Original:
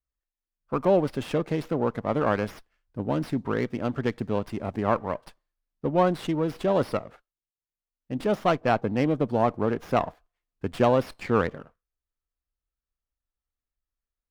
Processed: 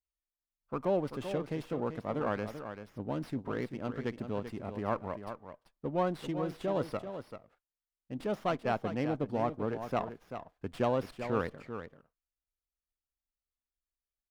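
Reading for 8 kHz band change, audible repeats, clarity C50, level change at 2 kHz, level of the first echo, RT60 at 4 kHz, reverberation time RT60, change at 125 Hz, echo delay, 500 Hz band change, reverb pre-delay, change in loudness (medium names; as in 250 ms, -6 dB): no reading, 1, no reverb, -8.5 dB, -9.5 dB, no reverb, no reverb, -8.5 dB, 388 ms, -8.5 dB, no reverb, -9.0 dB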